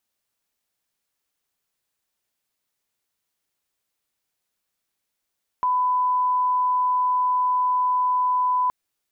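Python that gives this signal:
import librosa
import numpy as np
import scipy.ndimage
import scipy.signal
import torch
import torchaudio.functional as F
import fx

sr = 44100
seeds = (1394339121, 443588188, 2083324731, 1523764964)

y = fx.lineup_tone(sr, length_s=3.07, level_db=-18.0)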